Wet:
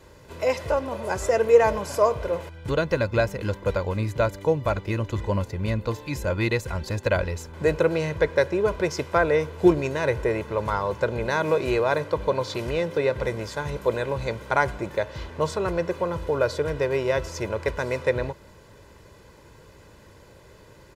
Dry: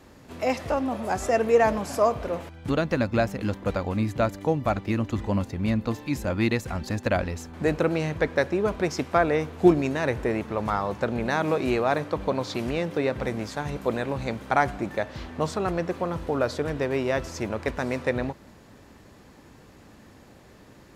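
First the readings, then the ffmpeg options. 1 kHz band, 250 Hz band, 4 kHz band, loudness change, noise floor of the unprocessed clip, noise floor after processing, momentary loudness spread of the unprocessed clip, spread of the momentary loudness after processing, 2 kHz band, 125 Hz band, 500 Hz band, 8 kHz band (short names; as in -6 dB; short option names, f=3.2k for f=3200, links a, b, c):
-0.5 dB, -3.0 dB, +1.5 dB, +1.5 dB, -51 dBFS, -50 dBFS, 7 LU, 7 LU, +2.0 dB, +1.5 dB, +3.0 dB, +1.5 dB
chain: -af "aecho=1:1:2:0.63"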